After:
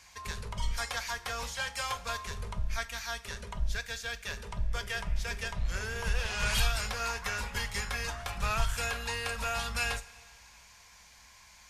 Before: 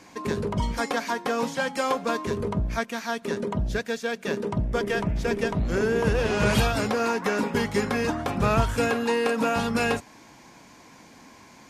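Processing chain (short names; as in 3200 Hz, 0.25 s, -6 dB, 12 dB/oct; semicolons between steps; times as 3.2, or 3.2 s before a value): octaver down 2 oct, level -3 dB; passive tone stack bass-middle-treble 10-0-10; on a send: reverb, pre-delay 3 ms, DRR 11 dB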